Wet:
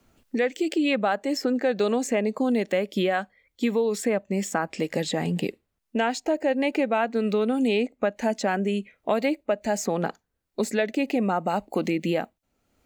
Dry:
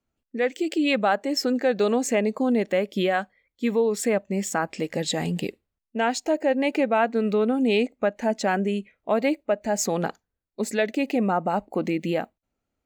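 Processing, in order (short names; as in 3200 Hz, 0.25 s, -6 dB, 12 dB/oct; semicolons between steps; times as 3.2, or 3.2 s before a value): three-band squash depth 70%; gain -1.5 dB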